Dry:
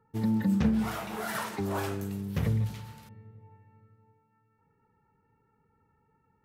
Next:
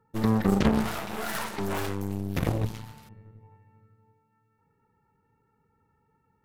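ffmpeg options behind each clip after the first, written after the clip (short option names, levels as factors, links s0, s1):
-filter_complex "[0:a]asplit=2[s0][s1];[s1]alimiter=limit=0.0631:level=0:latency=1,volume=0.708[s2];[s0][s2]amix=inputs=2:normalize=0,aeval=exprs='0.237*(cos(1*acos(clip(val(0)/0.237,-1,1)))-cos(1*PI/2))+0.0422*(cos(3*acos(clip(val(0)/0.237,-1,1)))-cos(3*PI/2))+0.075*(cos(6*acos(clip(val(0)/0.237,-1,1)))-cos(6*PI/2))+0.0668*(cos(8*acos(clip(val(0)/0.237,-1,1)))-cos(8*PI/2))':c=same,volume=1.26"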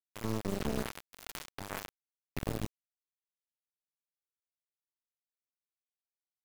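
-af "areverse,acompressor=threshold=0.0282:ratio=12,areverse,acrusher=bits=4:dc=4:mix=0:aa=0.000001,volume=1.41"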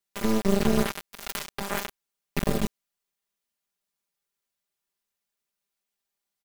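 -af "aecho=1:1:5:0.93,volume=2.51"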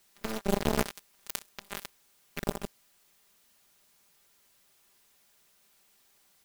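-af "aeval=exprs='val(0)+0.5*0.0168*sgn(val(0))':c=same,aeval=exprs='0.422*(cos(1*acos(clip(val(0)/0.422,-1,1)))-cos(1*PI/2))+0.15*(cos(3*acos(clip(val(0)/0.422,-1,1)))-cos(3*PI/2))+0.0106*(cos(5*acos(clip(val(0)/0.422,-1,1)))-cos(5*PI/2))+0.00841*(cos(7*acos(clip(val(0)/0.422,-1,1)))-cos(7*PI/2))':c=same"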